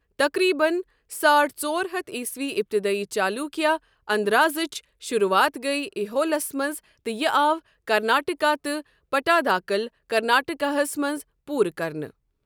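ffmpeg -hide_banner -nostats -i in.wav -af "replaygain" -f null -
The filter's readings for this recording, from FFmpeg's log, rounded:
track_gain = +2.6 dB
track_peak = 0.330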